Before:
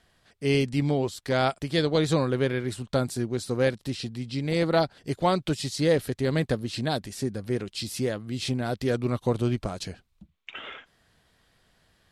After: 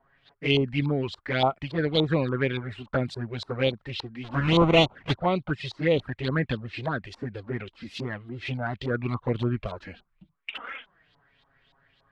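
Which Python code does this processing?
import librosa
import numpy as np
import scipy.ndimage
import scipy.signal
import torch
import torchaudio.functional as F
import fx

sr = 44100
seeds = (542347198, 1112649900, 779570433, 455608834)

y = fx.halfwave_hold(x, sr, at=(4.23, 5.15), fade=0.02)
y = fx.filter_lfo_lowpass(y, sr, shape='saw_up', hz=3.5, low_hz=880.0, high_hz=4000.0, q=4.1)
y = fx.env_flanger(y, sr, rest_ms=7.5, full_db=-17.5)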